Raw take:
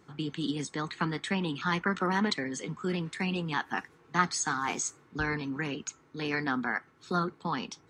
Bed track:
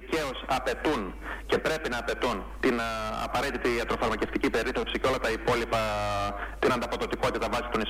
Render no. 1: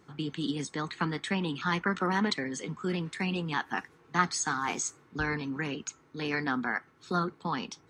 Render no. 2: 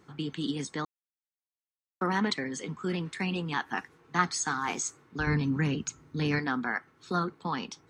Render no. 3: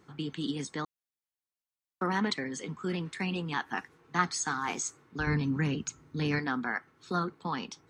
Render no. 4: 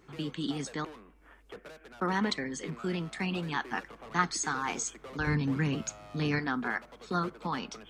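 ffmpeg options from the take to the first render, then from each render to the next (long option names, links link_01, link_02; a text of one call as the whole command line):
ffmpeg -i in.wav -af "bandreject=frequency=7300:width=27" out.wav
ffmpeg -i in.wav -filter_complex "[0:a]asettb=1/sr,asplit=3[link_01][link_02][link_03];[link_01]atrim=end=5.274[link_04];[link_02]atrim=start=5.27:end=6.39,asetpts=PTS-STARTPTS,afade=type=in:duration=0.004:curve=qsin,afade=type=out:start_time=1.116:duration=0.004:curve=qsin,bass=frequency=250:gain=13,treble=frequency=4000:gain=3[link_05];[link_03]atrim=start=6.386[link_06];[link_04][link_05]acrossfade=duration=0.004:curve1=hsin:curve2=qsin[link_07];[link_07][link_06]acrossfade=duration=0.004:curve1=qsin:curve2=hsin,asplit=3[link_08][link_09][link_10];[link_08]atrim=end=0.85,asetpts=PTS-STARTPTS,afade=type=out:start_time=0.846:duration=0.004:curve=hsin[link_11];[link_09]atrim=start=0.85:end=2.01,asetpts=PTS-STARTPTS,volume=0[link_12];[link_10]atrim=start=2.01,asetpts=PTS-STARTPTS,afade=type=in:duration=0.004:curve=hsin[link_13];[link_11][link_12][link_13]concat=n=3:v=0:a=1" out.wav
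ffmpeg -i in.wav -af "volume=-1.5dB" out.wav
ffmpeg -i in.wav -i bed.wav -filter_complex "[1:a]volume=-21dB[link_01];[0:a][link_01]amix=inputs=2:normalize=0" out.wav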